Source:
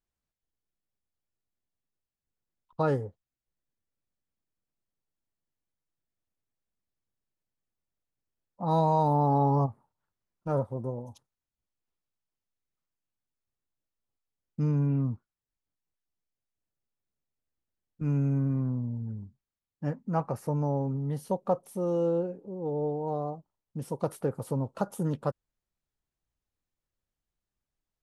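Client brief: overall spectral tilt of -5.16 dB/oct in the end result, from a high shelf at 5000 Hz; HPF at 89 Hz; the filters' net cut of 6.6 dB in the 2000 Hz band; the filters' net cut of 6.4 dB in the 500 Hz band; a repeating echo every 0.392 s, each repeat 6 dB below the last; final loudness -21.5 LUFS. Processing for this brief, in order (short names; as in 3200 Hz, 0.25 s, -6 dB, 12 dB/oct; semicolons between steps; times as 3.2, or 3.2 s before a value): HPF 89 Hz; bell 500 Hz -7 dB; bell 2000 Hz -8.5 dB; high shelf 5000 Hz -8.5 dB; feedback echo 0.392 s, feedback 50%, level -6 dB; gain +11 dB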